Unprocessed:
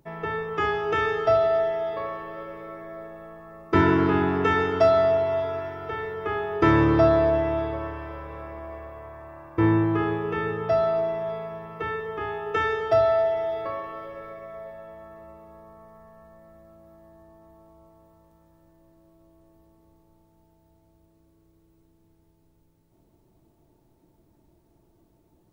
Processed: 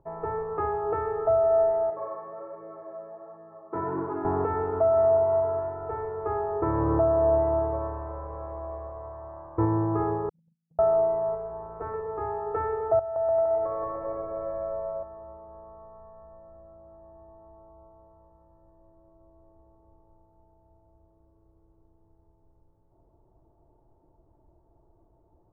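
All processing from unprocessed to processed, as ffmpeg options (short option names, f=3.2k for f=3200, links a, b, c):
-filter_complex "[0:a]asettb=1/sr,asplit=3[a][b][c];[a]atrim=end=1.904[d];[b]atrim=start=1.9:end=4.25,asetpts=PTS-STARTPTS,afade=t=in:d=0.004:c=qsin,afade=t=out:st=2.346:d=0.004:c=qsin,highpass=f=130:w=0.5412,highpass=f=130:w=1.3066,acompressor=threshold=-29dB:ratio=1.5:attack=3.2:release=140:knee=1:detection=peak,flanger=delay=18.5:depth=4.8:speed=1.3[e];[c]atrim=start=4.246[f];[d][e]acrossfade=d=0.004:c1=hsin:c2=qsin[g];[g][f]acrossfade=d=0.004:c1=qsin:c2=hsin,asettb=1/sr,asplit=3[h][i][j];[h]atrim=end=10.294[k];[i]atrim=start=10.29:end=10.79,asetpts=PTS-STARTPTS,afade=t=in:d=0.004:c=qsin,afade=t=out:st=0.496:d=0.004:c=qsin,agate=range=-38dB:threshold=-25dB:ratio=16:release=100:detection=peak,asuperpass=centerf=180:order=8:qfactor=2.4,acompressor=threshold=-56dB:ratio=5:attack=3.2:release=140:knee=1:detection=peak[l];[j]atrim=start=10.786[m];[k][l]acrossfade=d=0.004:c1=hsin:c2=qsin[n];[n][m]acrossfade=d=0.004:c1=qsin:c2=hsin,asettb=1/sr,asplit=3[o][p][q];[o]atrim=end=11.354[r];[p]atrim=start=11.35:end=11.94,asetpts=PTS-STARTPTS,afade=t=in:d=0.004:c=qsin,afade=t=out:st=0.586:d=0.004:c=qsin,aeval=exprs='val(0)+0.5*0.00631*sgn(val(0))':c=same,highshelf=f=4.2k:g=-10,tremolo=f=220:d=0.71[s];[q]atrim=start=11.936[t];[r][s]acrossfade=d=0.004:c1=hsin:c2=qsin[u];[u][t]acrossfade=d=0.004:c1=qsin:c2=hsin,asettb=1/sr,asplit=3[v][w][x];[v]atrim=end=12.994[y];[w]atrim=start=12.99:end=15.03,asetpts=PTS-STARTPTS,afade=t=in:d=0.004:c=qsin,afade=t=out:st=2.036:d=0.004:c=qsin,acompressor=threshold=-29dB:ratio=12:attack=3.2:release=140:knee=1:detection=peak,aecho=1:1:170|297.5|393.1|464.8|518.6|559|589.2:0.794|0.631|0.501|0.398|0.316|0.251|0.2,atrim=end_sample=89964[z];[x]atrim=start=15.026[aa];[y][z]acrossfade=d=0.004:c1=hsin:c2=qsin[ab];[ab][aa]acrossfade=d=0.004:c1=qsin:c2=hsin,equalizer=f=210:w=0.81:g=-14.5,alimiter=limit=-18.5dB:level=0:latency=1:release=333,lowpass=f=1k:w=0.5412,lowpass=f=1k:w=1.3066,volume=5.5dB"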